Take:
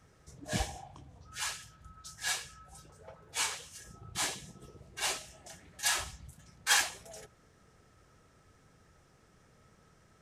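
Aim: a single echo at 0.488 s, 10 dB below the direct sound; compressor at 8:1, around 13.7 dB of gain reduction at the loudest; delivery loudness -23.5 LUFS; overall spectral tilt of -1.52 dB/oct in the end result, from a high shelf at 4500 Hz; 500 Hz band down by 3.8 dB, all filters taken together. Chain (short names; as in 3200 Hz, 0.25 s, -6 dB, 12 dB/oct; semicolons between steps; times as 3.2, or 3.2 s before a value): bell 500 Hz -5.5 dB; high shelf 4500 Hz +9 dB; compressor 8:1, threshold -32 dBFS; echo 0.488 s -10 dB; gain +15 dB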